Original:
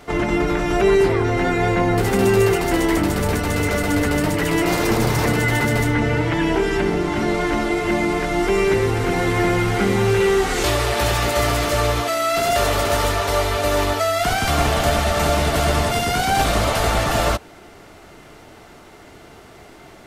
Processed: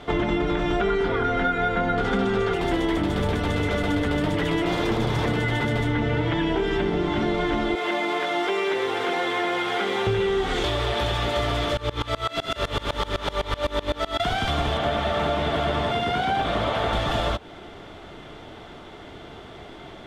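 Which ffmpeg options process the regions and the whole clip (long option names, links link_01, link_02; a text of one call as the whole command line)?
ffmpeg -i in.wav -filter_complex "[0:a]asettb=1/sr,asplit=3[link_01][link_02][link_03];[link_01]atrim=end=0.804[link_04];[link_02]atrim=start=0.8:end=2.54,asetpts=PTS-STARTPTS,afade=type=in:duration=0.004:curve=qsin,afade=type=out:start_time=1.736:duration=0.004:curve=qsin,acrossover=split=8000[link_05][link_06];[link_06]acompressor=threshold=-51dB:ratio=4:attack=1:release=60[link_07];[link_05][link_07]amix=inputs=2:normalize=0,equalizer=frequency=1400:width=5.5:gain=12,aecho=1:1:4.2:0.51,atrim=end_sample=76734[link_08];[link_03]atrim=start=2.536[link_09];[link_04][link_08]acrossfade=duration=0.004:curve1=hsin:curve2=qsin[link_10];[link_10][link_09]acrossfade=duration=0.004:curve1=qsin:curve2=hsin,asettb=1/sr,asplit=3[link_11][link_12][link_13];[link_11]atrim=end=7.754[link_14];[link_12]atrim=start=7.75:end=10.07,asetpts=PTS-STARTPTS,afade=type=in:duration=0.004:curve=qsin,afade=type=out:start_time=2.316:duration=0.004:curve=qsin,highpass=490,acrusher=bits=5:mix=0:aa=0.5[link_15];[link_13]atrim=start=10.066[link_16];[link_14][link_15]acrossfade=duration=0.004:curve1=hsin:curve2=qsin[link_17];[link_17][link_16]acrossfade=duration=0.004:curve1=qsin:curve2=hsin,asettb=1/sr,asplit=3[link_18][link_19][link_20];[link_18]atrim=end=11.774[link_21];[link_19]atrim=start=11.77:end=14.2,asetpts=PTS-STARTPTS,afade=type=in:duration=0.004:curve=qsin,afade=type=out:start_time=2.426:duration=0.004:curve=qsin,bandreject=frequency=700:width=7.3,aecho=1:1:241:0.596,atrim=end_sample=107163,aeval=exprs='val(0)*pow(10,-24*if(lt(mod(-7.9*n/s,1),2*abs(-7.9)/1000),1-mod(-7.9*n/s,1)/(2*abs(-7.9)/1000),(mod(-7.9*n/s,1)-2*abs(-7.9)/1000)/(1-2*abs(-7.9)/1000))/20)':channel_layout=same[link_22];[link_20]atrim=start=14.196[link_23];[link_21][link_22]acrossfade=duration=0.004:curve1=hsin:curve2=qsin[link_24];[link_24][link_23]acrossfade=duration=0.004:curve1=qsin:curve2=hsin,asettb=1/sr,asplit=3[link_25][link_26][link_27];[link_25]atrim=end=14.774[link_28];[link_26]atrim=start=14.77:end=16.93,asetpts=PTS-STARTPTS,afade=type=in:duration=0.004:curve=qsin,afade=type=out:start_time=2.156:duration=0.004:curve=qsin,acrossover=split=3000[link_29][link_30];[link_30]acompressor=threshold=-35dB:ratio=4:attack=1:release=60[link_31];[link_29][link_31]amix=inputs=2:normalize=0,highpass=frequency=130:poles=1[link_32];[link_27]atrim=start=16.926[link_33];[link_28][link_32]acrossfade=duration=0.004:curve1=hsin:curve2=qsin[link_34];[link_34][link_33]acrossfade=duration=0.004:curve1=qsin:curve2=hsin,equalizer=frequency=3400:width_type=o:width=0.26:gain=14,acompressor=threshold=-22dB:ratio=6,aemphasis=mode=reproduction:type=75fm,volume=1.5dB" out.wav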